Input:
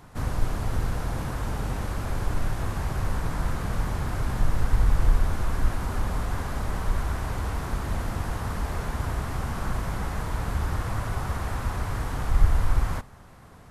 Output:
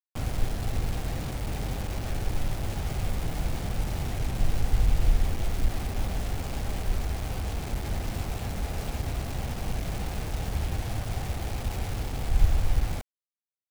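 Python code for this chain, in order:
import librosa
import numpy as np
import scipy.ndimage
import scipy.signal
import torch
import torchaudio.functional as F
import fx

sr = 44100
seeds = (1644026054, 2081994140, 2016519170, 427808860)

y = scipy.signal.sosfilt(scipy.signal.ellip(3, 1.0, 40, [820.0, 2200.0], 'bandstop', fs=sr, output='sos'), x)
y = fx.high_shelf(y, sr, hz=5700.0, db=-11.5)
y = fx.quant_dither(y, sr, seeds[0], bits=6, dither='none')
y = y * 10.0 ** (-2.0 / 20.0)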